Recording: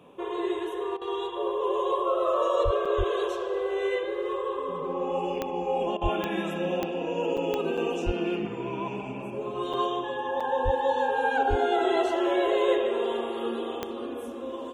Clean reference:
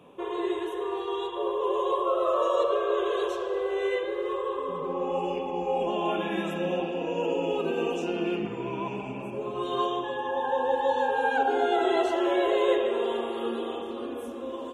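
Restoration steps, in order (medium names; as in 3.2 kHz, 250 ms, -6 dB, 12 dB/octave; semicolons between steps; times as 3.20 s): de-click; de-plosive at 2.64/2.97/6.02/8.05/10.64/11.49 s; interpolate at 2.85/7.37/7.77/9.73/10.40 s, 5.5 ms; interpolate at 0.97/5.97 s, 43 ms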